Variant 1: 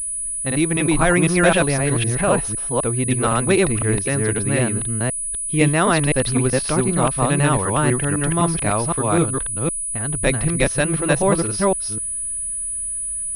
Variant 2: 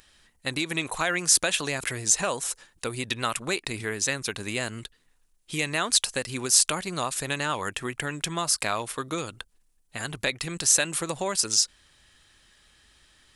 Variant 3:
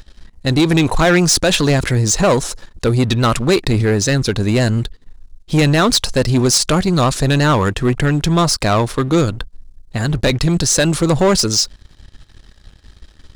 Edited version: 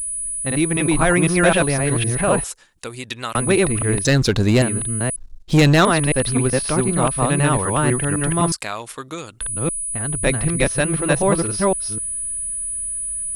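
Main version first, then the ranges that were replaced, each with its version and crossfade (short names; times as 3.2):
1
2.44–3.35 from 2
4.05–4.62 from 3
5.16–5.85 from 3
8.52–9.41 from 2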